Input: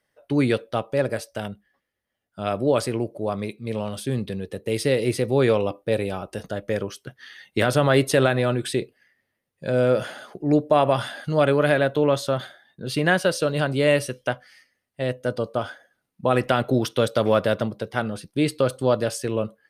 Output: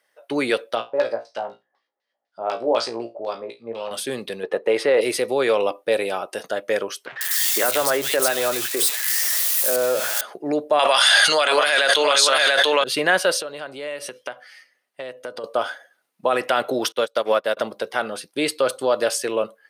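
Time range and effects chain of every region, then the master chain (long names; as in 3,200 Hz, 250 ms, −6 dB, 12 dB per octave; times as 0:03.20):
0:00.75–0:03.91: auto-filter low-pass square 4 Hz 850–4,700 Hz + tuned comb filter 58 Hz, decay 0.2 s, mix 100%
0:04.43–0:05.01: low-pass filter 1,700 Hz 6 dB per octave + parametric band 1,000 Hz +12 dB 2.7 octaves
0:07.06–0:10.21: spike at every zero crossing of −17 dBFS + three-band delay without the direct sound mids, lows, highs 50/150 ms, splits 170/2,400 Hz + downward compressor 2.5 to 1, threshold −22 dBFS
0:10.79–0:12.84: meter weighting curve ITU-R 468 + single-tap delay 687 ms −7 dB + envelope flattener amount 100%
0:13.41–0:15.44: high-shelf EQ 5,300 Hz −5 dB + downward compressor 8 to 1, threshold −31 dBFS
0:16.92–0:17.57: parametric band 62 Hz −13.5 dB 0.78 octaves + expander for the loud parts 2.5 to 1, over −35 dBFS
whole clip: brickwall limiter −12.5 dBFS; high-pass filter 500 Hz 12 dB per octave; level +7 dB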